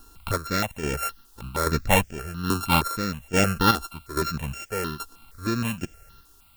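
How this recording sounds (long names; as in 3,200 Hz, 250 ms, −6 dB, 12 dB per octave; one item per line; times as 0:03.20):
a buzz of ramps at a fixed pitch in blocks of 32 samples
chopped level 1.2 Hz, depth 60%, duty 45%
a quantiser's noise floor 10 bits, dither triangular
notches that jump at a steady rate 6.4 Hz 580–4,000 Hz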